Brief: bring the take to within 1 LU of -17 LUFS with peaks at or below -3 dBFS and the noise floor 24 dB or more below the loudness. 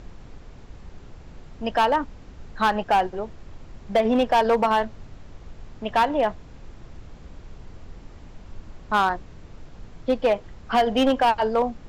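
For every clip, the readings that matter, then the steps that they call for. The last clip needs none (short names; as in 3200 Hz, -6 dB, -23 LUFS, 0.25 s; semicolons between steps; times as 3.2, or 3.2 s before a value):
clipped 1.1%; flat tops at -13.5 dBFS; noise floor -45 dBFS; noise floor target -47 dBFS; loudness -23.0 LUFS; peak -13.5 dBFS; loudness target -17.0 LUFS
-> clip repair -13.5 dBFS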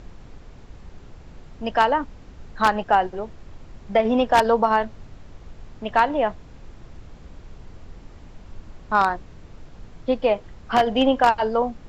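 clipped 0.0%; noise floor -45 dBFS; noise floor target -46 dBFS
-> noise print and reduce 6 dB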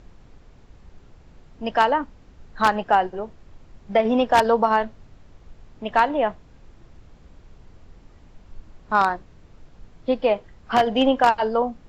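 noise floor -51 dBFS; loudness -21.5 LUFS; peak -4.5 dBFS; loudness target -17.0 LUFS
-> gain +4.5 dB; limiter -3 dBFS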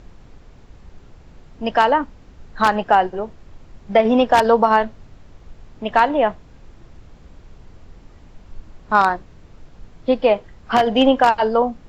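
loudness -17.5 LUFS; peak -3.0 dBFS; noise floor -46 dBFS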